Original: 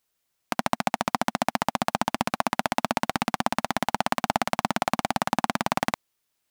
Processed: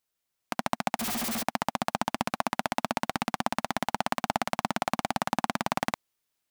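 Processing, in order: 0.99–1.43 s: one-bit comparator; level rider; trim -6.5 dB

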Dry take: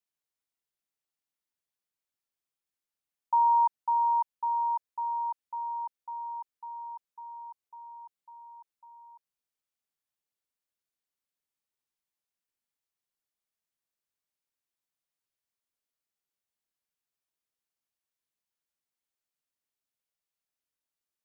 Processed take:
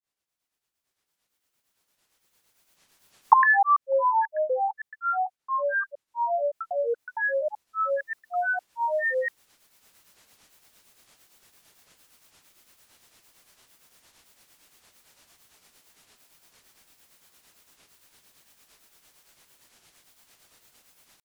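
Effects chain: recorder AGC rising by 9 dB/s; granulator 188 ms, grains 8.8 per s, pitch spread up and down by 12 st; trim +5 dB

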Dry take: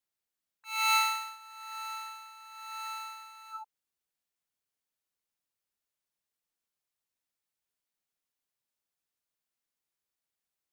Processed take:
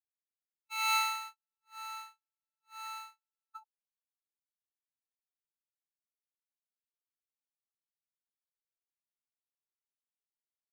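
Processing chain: gate -40 dBFS, range -51 dB; trim -3.5 dB

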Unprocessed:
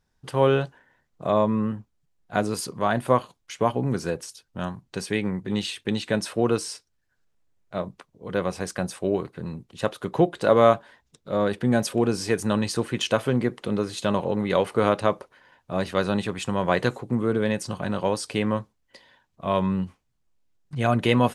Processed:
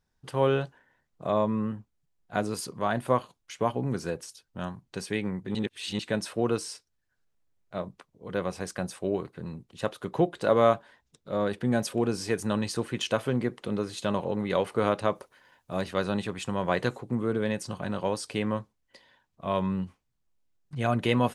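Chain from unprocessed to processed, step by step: 5.55–5.99 s: reverse; 15.15–15.81 s: treble shelf 6.1 kHz +11 dB; trim -4.5 dB

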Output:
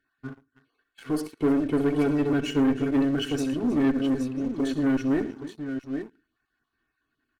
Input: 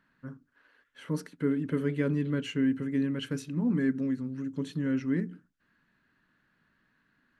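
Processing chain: random holes in the spectrogram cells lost 22%; comb 2.7 ms, depth 95%; multi-tap echo 65/111/313/822 ms -14.5/-15.5/-17/-8.5 dB; Chebyshev shaper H 3 -21 dB, 4 -23 dB, 8 -32 dB, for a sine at -13.5 dBFS; band-stop 2 kHz, Q 11; waveshaping leveller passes 2; trim -1 dB

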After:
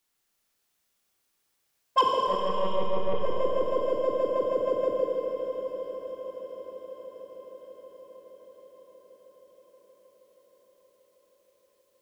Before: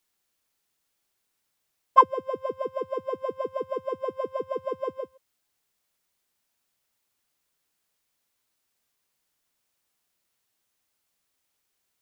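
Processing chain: in parallel at +2 dB: level held to a coarse grid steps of 17 dB; on the sum: saturation -10.5 dBFS, distortion -8 dB; echo that smears into a reverb 678 ms, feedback 65%, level -11 dB; 2.27–3.21 s: monotone LPC vocoder at 8 kHz 190 Hz; Schroeder reverb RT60 3.2 s, combs from 27 ms, DRR -1 dB; trim -5 dB

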